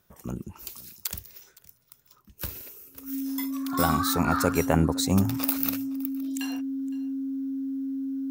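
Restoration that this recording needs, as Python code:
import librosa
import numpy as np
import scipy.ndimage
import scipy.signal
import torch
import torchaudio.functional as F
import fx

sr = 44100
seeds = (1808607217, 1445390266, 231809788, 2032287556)

y = fx.notch(x, sr, hz=270.0, q=30.0)
y = fx.fix_echo_inverse(y, sr, delay_ms=514, level_db=-22.5)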